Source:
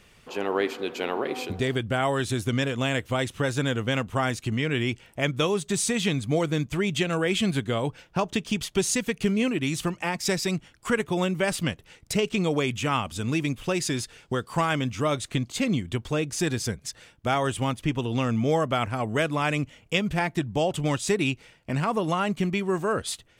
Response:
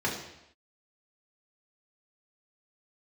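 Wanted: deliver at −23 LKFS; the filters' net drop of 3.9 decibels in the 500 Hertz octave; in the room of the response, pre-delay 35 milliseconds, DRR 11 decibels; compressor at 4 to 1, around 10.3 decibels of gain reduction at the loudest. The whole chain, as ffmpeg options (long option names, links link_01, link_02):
-filter_complex "[0:a]equalizer=frequency=500:width_type=o:gain=-5,acompressor=threshold=-34dB:ratio=4,asplit=2[link_01][link_02];[1:a]atrim=start_sample=2205,adelay=35[link_03];[link_02][link_03]afir=irnorm=-1:irlink=0,volume=-20.5dB[link_04];[link_01][link_04]amix=inputs=2:normalize=0,volume=13.5dB"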